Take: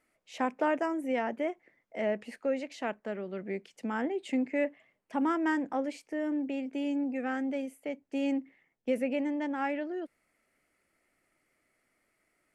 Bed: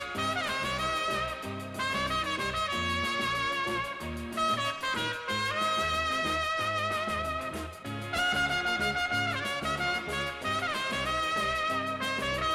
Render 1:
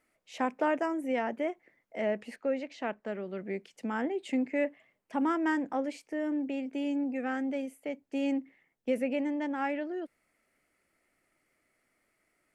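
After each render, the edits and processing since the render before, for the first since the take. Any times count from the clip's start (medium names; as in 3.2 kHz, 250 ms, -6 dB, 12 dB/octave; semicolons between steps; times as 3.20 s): 2.36–3.06 s: distance through air 84 m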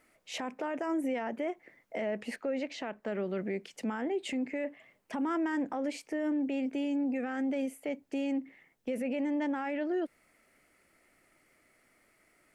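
in parallel at +3 dB: compression, threshold -39 dBFS, peak gain reduction 15 dB; on the sum: peak limiter -25.5 dBFS, peak gain reduction 12 dB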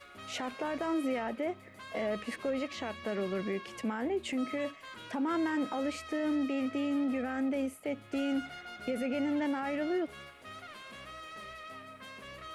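add bed -16.5 dB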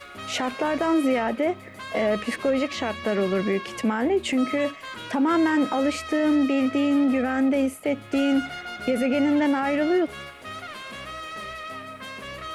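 trim +10.5 dB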